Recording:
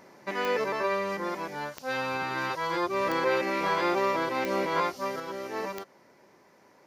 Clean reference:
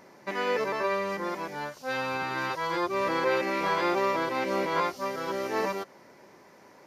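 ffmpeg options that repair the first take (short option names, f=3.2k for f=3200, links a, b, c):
-af "adeclick=t=4,asetnsamples=n=441:p=0,asendcmd='5.2 volume volume 5dB',volume=0dB"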